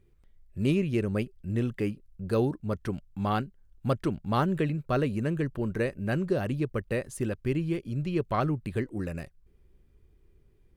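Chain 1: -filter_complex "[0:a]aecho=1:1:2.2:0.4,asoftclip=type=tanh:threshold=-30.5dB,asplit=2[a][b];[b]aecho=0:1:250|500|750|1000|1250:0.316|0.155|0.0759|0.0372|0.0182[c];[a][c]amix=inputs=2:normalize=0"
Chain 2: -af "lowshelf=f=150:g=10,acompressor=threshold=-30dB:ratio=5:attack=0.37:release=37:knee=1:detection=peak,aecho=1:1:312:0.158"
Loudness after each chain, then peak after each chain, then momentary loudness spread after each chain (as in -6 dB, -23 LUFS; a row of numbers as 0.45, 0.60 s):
-36.0, -35.5 LUFS; -26.5, -25.0 dBFS; 7, 5 LU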